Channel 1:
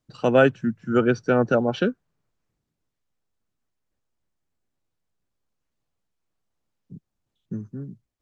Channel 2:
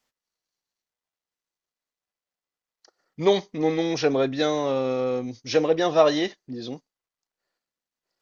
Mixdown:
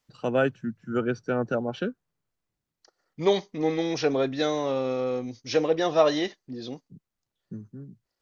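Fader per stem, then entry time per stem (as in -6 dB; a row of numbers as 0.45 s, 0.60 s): -7.0 dB, -2.5 dB; 0.00 s, 0.00 s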